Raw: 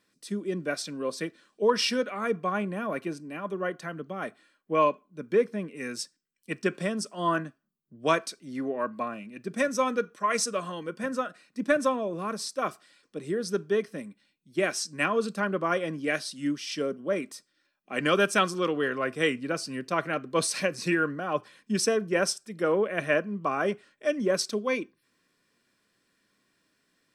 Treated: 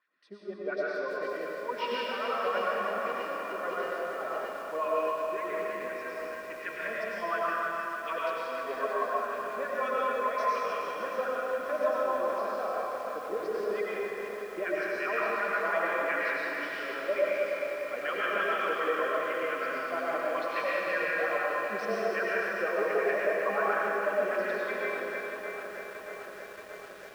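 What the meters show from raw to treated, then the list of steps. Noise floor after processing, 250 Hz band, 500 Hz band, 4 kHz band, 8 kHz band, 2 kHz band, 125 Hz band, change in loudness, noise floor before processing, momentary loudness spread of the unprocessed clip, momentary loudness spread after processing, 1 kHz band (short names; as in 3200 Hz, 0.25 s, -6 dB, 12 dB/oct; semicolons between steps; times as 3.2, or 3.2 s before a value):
-43 dBFS, -11.5 dB, -1.5 dB, -8.5 dB, under -15 dB, +1.0 dB, under -15 dB, -2.5 dB, -74 dBFS, 11 LU, 8 LU, +0.5 dB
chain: reverb removal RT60 0.83 s; HPF 200 Hz 6 dB/oct; dynamic EQ 2400 Hz, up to +5 dB, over -43 dBFS, Q 1.2; limiter -19.5 dBFS, peak gain reduction 11 dB; LFO band-pass sine 5.6 Hz 530–1900 Hz; polynomial smoothing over 15 samples; thinning echo 0.307 s, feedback 48%, high-pass 300 Hz, level -8 dB; digital reverb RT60 2.3 s, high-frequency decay 0.9×, pre-delay 65 ms, DRR -6 dB; lo-fi delay 0.628 s, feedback 80%, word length 8-bit, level -11 dB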